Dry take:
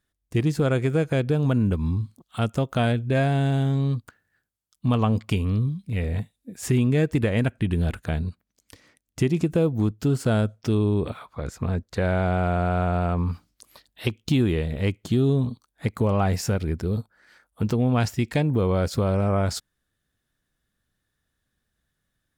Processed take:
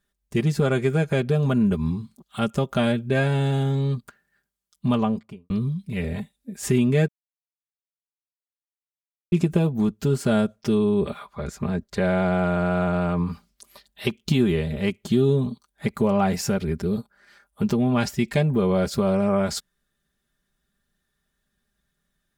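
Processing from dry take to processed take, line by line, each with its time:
0:04.86–0:05.50: fade out and dull
0:07.08–0:09.32: silence
whole clip: comb filter 5 ms, depth 75%

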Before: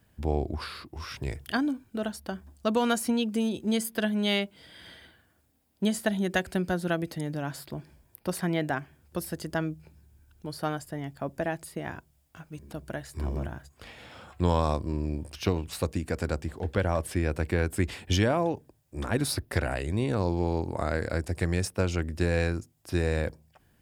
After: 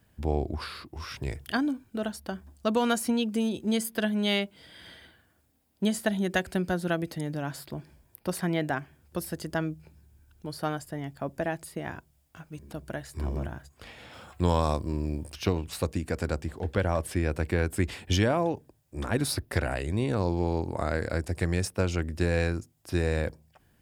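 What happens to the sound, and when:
0:14.13–0:15.34: high-shelf EQ 7,100 Hz +7 dB

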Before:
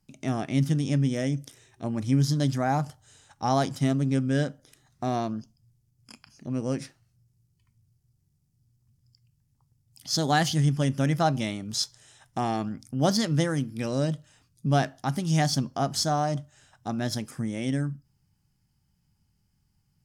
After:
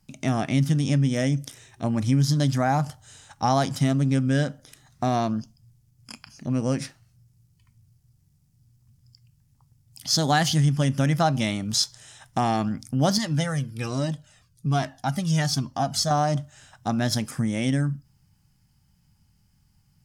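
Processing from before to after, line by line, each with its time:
0:13.18–0:16.11: flanger whose copies keep moving one way falling 1.2 Hz
whole clip: parametric band 380 Hz −5.5 dB 0.78 octaves; downward compressor 2 to 1, threshold −28 dBFS; level +7.5 dB

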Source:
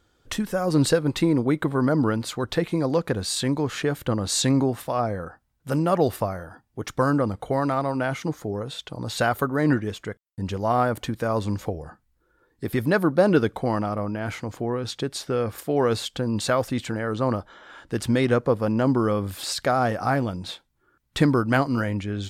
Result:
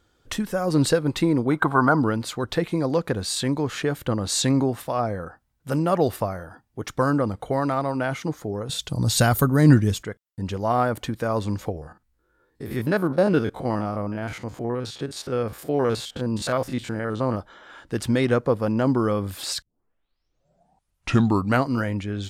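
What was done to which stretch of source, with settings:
0:01.51–0:01.99: gain on a spectral selection 660–1,600 Hz +11 dB
0:08.69–0:10.03: bass and treble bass +12 dB, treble +13 dB
0:11.72–0:17.37: spectrum averaged block by block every 50 ms
0:19.62: tape start 2.05 s

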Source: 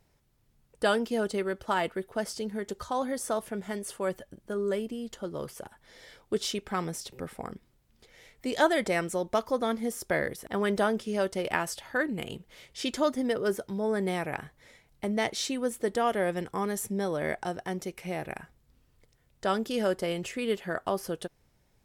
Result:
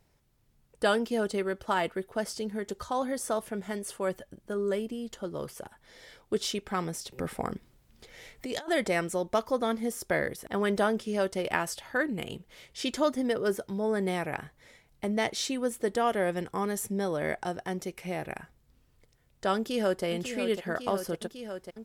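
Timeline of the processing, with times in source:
0:07.18–0:08.69: compressor whose output falls as the input rises −35 dBFS
0:19.56–0:20.05: delay throw 550 ms, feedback 85%, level −8.5 dB

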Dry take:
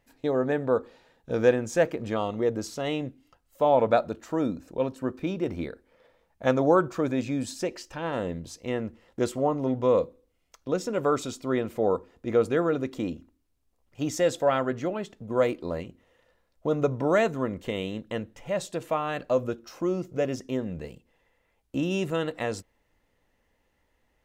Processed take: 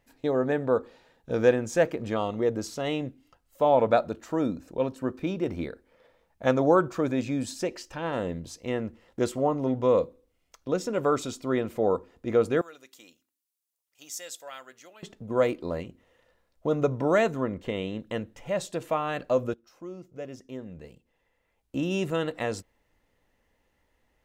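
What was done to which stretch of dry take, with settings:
0:12.61–0:15.03: first difference
0:17.40–0:18.00: high-shelf EQ 5,800 Hz −10.5 dB
0:19.54–0:22.02: fade in quadratic, from −13.5 dB

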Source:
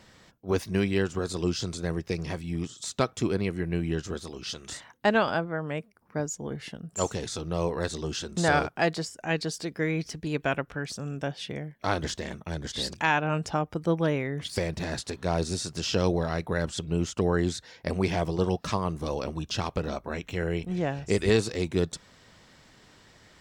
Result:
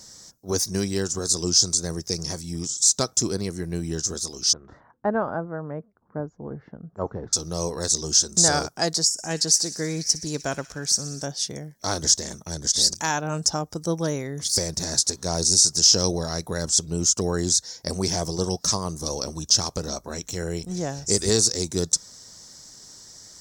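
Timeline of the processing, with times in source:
0:04.53–0:07.33: low-pass filter 1,500 Hz 24 dB per octave
0:09.06–0:11.26: delay with a high-pass on its return 61 ms, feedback 79%, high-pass 1,800 Hz, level −16.5 dB
whole clip: high shelf with overshoot 4,000 Hz +14 dB, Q 3

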